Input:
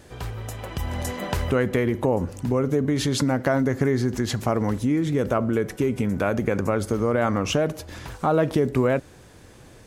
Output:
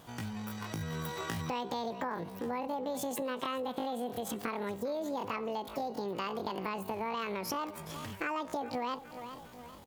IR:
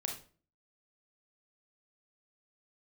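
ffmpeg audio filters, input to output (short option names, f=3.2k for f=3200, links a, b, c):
-af "aecho=1:1:405|810|1215:0.119|0.0499|0.021,asetrate=85689,aresample=44100,atempo=0.514651,acompressor=threshold=-29dB:ratio=3,volume=-6dB"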